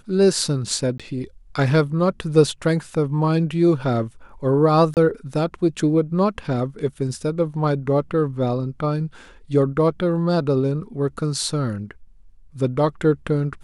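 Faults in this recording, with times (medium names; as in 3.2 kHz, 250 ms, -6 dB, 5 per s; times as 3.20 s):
0.98–1.00 s: dropout 16 ms
4.94–4.97 s: dropout 28 ms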